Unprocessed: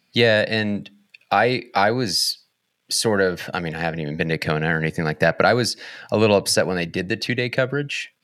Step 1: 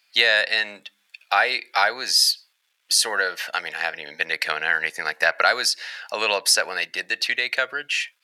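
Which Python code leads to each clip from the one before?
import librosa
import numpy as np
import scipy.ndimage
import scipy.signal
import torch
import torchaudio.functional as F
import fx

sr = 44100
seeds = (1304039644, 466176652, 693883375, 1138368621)

y = scipy.signal.sosfilt(scipy.signal.butter(2, 1100.0, 'highpass', fs=sr, output='sos'), x)
y = y * librosa.db_to_amplitude(3.5)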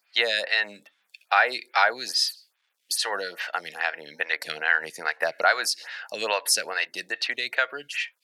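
y = fx.stagger_phaser(x, sr, hz=2.4)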